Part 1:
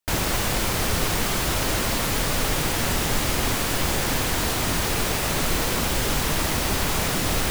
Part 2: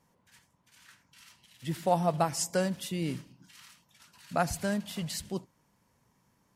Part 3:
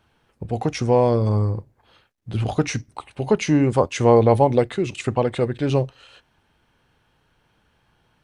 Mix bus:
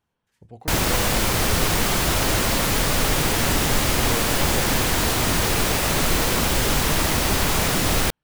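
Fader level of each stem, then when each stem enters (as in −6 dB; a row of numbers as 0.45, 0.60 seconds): +3.0, −13.0, −17.5 decibels; 0.60, 0.00, 0.00 seconds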